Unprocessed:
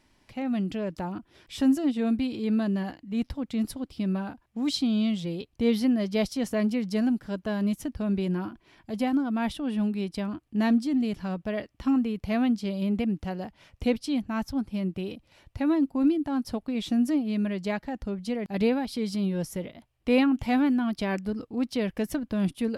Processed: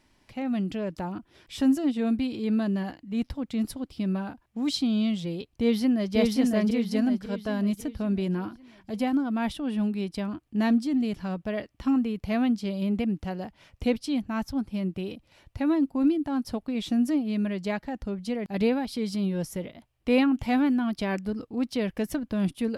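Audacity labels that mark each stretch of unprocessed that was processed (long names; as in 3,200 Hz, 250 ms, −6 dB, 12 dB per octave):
5.510000	6.150000	delay throw 550 ms, feedback 45%, level −1.5 dB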